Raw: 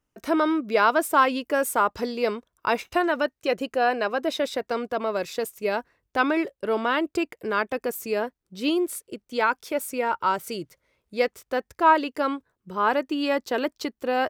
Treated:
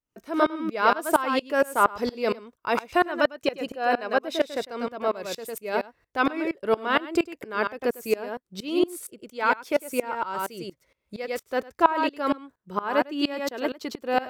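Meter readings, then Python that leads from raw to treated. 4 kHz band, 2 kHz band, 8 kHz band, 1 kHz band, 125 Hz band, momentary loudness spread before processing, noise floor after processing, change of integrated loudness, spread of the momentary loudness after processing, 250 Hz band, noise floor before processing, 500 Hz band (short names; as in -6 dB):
-0.5 dB, -1.5 dB, -3.0 dB, -1.5 dB, n/a, 10 LU, -77 dBFS, -1.0 dB, 10 LU, -1.0 dB, -81 dBFS, -1.0 dB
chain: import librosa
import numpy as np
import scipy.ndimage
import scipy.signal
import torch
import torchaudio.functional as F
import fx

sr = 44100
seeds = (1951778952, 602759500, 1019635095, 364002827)

y = x + 10.0 ** (-7.0 / 20.0) * np.pad(x, (int(102 * sr / 1000.0), 0))[:len(x)]
y = fx.tremolo_decay(y, sr, direction='swelling', hz=4.3, depth_db=23)
y = F.gain(torch.from_numpy(y), 5.5).numpy()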